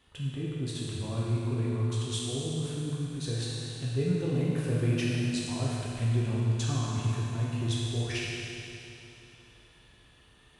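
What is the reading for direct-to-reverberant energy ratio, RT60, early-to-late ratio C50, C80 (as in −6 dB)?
−6.5 dB, 3.0 s, −3.0 dB, −1.5 dB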